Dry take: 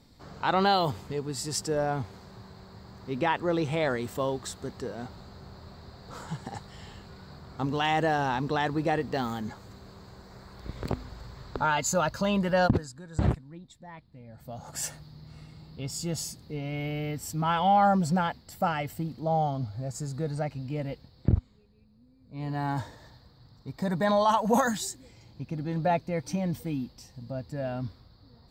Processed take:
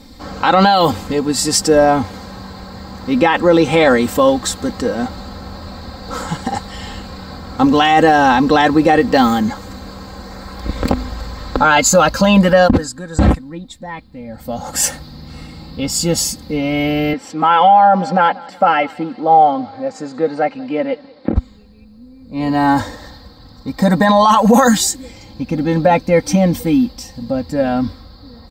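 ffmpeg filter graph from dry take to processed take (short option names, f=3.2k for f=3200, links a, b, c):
-filter_complex "[0:a]asettb=1/sr,asplit=3[a][b][c];[a]atrim=end=17.134[d];[b]atrim=start=17.13:end=21.36,asetpts=PTS-STARTPTS,afade=t=in:d=0.004:c=qsin,afade=t=out:st=4.226:d=0.004:c=qsin,highpass=320,lowpass=2.8k,aecho=1:1:186|372|558:0.0631|0.0284|0.0128,atrim=end_sample=186543[e];[c]atrim=start=21.356[f];[d][e]acrossfade=d=0.004:c1=hsin:c2=qsin[g];[g][f]acrossfade=d=0.004:c1=qsin:c2=hsin,aecho=1:1:3.8:0.72,alimiter=level_in=17dB:limit=-1dB:release=50:level=0:latency=1,volume=-1dB"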